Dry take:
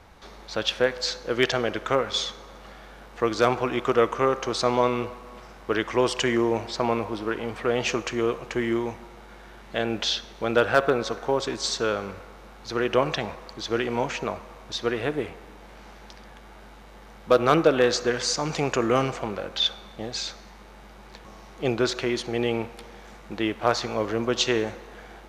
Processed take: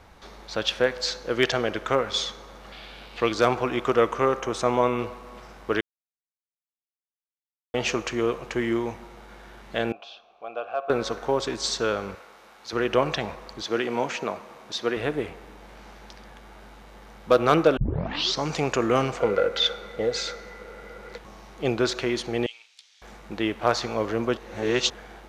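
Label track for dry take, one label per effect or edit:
2.720000	3.320000	flat-topped bell 3,300 Hz +11 dB 1.3 octaves
4.400000	4.990000	parametric band 4,500 Hz −13 dB 0.44 octaves
5.810000	7.740000	silence
9.920000	10.900000	formant filter a
12.150000	12.730000	high-pass filter 750 Hz 6 dB per octave
13.620000	14.970000	high-pass filter 160 Hz
17.770000	17.770000	tape start 0.68 s
19.200000	21.180000	hollow resonant body resonances 480/1,400/2,000 Hz, height 17 dB
22.460000	23.020000	flat-topped band-pass 5,100 Hz, Q 1.1
24.370000	24.900000	reverse

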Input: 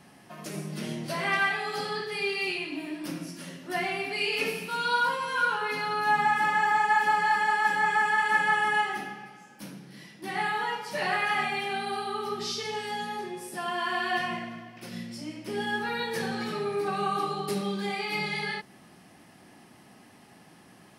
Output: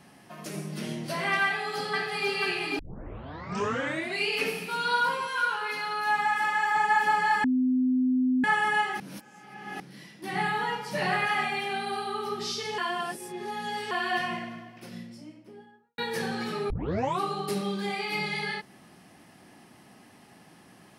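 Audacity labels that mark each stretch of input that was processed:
1.440000	2.270000	delay throw 490 ms, feedback 70%, level −3.5 dB
2.790000	2.790000	tape start 1.45 s
5.270000	6.760000	low-shelf EQ 450 Hz −11 dB
7.440000	8.440000	beep over 255 Hz −21 dBFS
9.000000	9.800000	reverse
10.320000	11.270000	parametric band 110 Hz +10.5 dB 2.1 octaves
12.780000	13.910000	reverse
14.430000	15.980000	fade out and dull
16.700000	16.700000	tape start 0.51 s

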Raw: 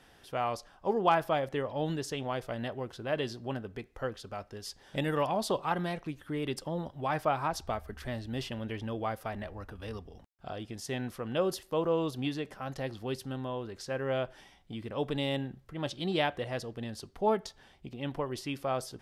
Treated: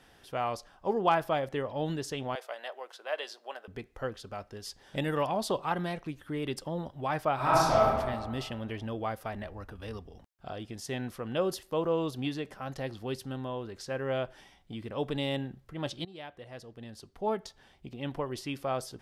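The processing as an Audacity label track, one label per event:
2.350000	3.680000	high-pass filter 550 Hz 24 dB per octave
7.350000	7.850000	thrown reverb, RT60 1.6 s, DRR −9 dB
16.050000	17.960000	fade in linear, from −21 dB

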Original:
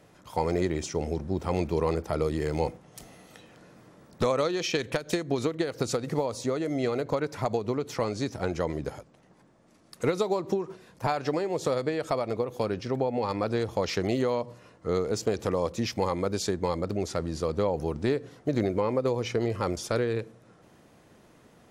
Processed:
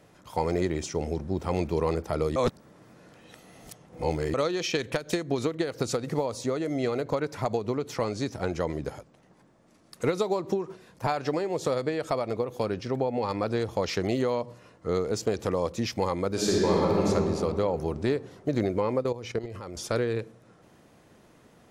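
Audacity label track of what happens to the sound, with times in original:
2.360000	4.340000	reverse
16.280000	17.070000	thrown reverb, RT60 2.5 s, DRR −5 dB
19.020000	19.760000	output level in coarse steps of 13 dB

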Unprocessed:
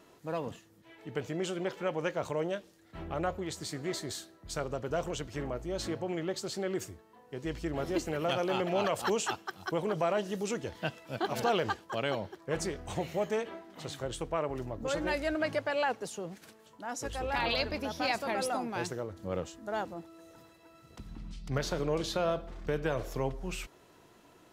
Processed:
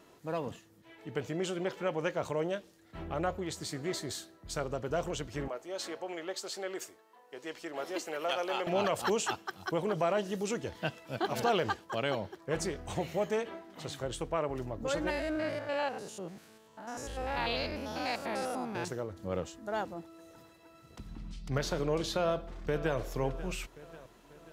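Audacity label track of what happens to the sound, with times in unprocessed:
5.480000	8.670000	high-pass filter 490 Hz
15.100000	18.880000	spectrum averaged block by block every 100 ms
22.200000	22.980000	delay throw 540 ms, feedback 55%, level −15 dB

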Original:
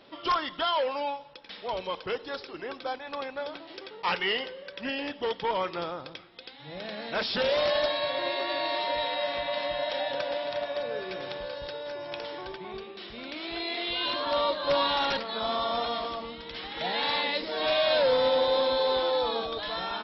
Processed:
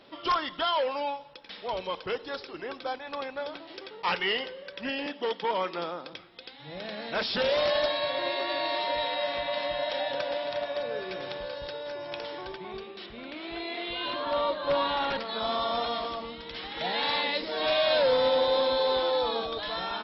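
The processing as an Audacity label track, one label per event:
5.060000	6.130000	Butterworth high-pass 170 Hz
13.060000	15.200000	high-frequency loss of the air 210 metres

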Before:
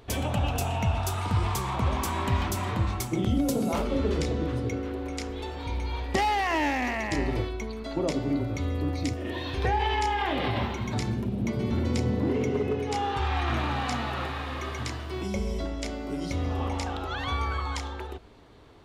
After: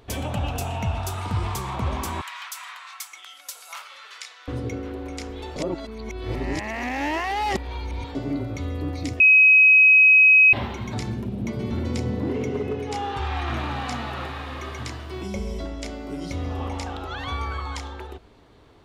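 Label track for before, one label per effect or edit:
2.210000	4.480000	high-pass filter 1,200 Hz 24 dB per octave
5.560000	8.150000	reverse
9.200000	10.530000	beep over 2,540 Hz −10 dBFS

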